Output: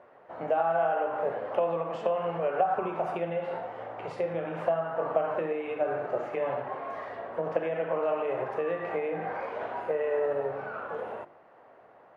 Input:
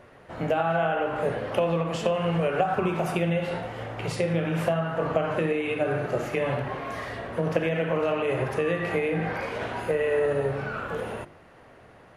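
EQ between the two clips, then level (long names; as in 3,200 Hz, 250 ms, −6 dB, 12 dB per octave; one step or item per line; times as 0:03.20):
resonant band-pass 760 Hz, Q 1.2
0.0 dB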